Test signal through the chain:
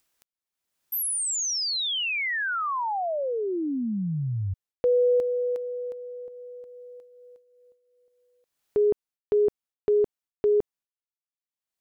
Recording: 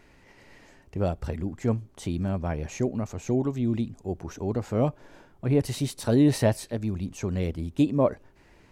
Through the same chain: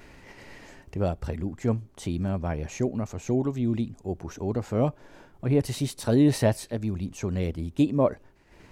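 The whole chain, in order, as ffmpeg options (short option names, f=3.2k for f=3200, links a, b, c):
-af "agate=range=-33dB:threshold=-50dB:ratio=3:detection=peak,acompressor=mode=upward:threshold=-37dB:ratio=2.5"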